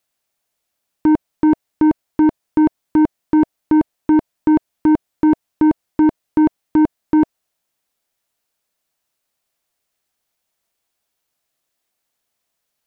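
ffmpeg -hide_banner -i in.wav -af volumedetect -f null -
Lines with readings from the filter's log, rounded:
mean_volume: -19.5 dB
max_volume: -9.2 dB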